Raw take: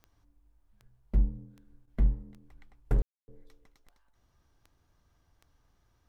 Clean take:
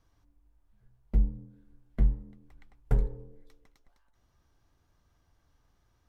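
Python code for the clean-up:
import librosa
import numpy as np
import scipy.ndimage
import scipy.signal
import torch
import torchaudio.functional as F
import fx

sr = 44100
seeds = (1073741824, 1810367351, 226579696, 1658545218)

y = fx.fix_declip(x, sr, threshold_db=-18.0)
y = fx.fix_declick_ar(y, sr, threshold=10.0)
y = fx.fix_ambience(y, sr, seeds[0], print_start_s=4.77, print_end_s=5.27, start_s=3.02, end_s=3.28)
y = fx.fix_interpolate(y, sr, at_s=(1.86,), length_ms=14.0)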